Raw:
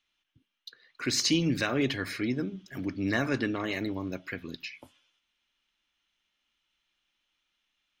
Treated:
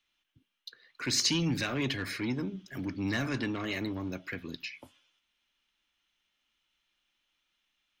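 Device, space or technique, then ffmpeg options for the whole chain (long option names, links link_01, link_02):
one-band saturation: -filter_complex "[0:a]acrossover=split=220|2000[link_01][link_02][link_03];[link_02]asoftclip=type=tanh:threshold=-33.5dB[link_04];[link_01][link_04][link_03]amix=inputs=3:normalize=0"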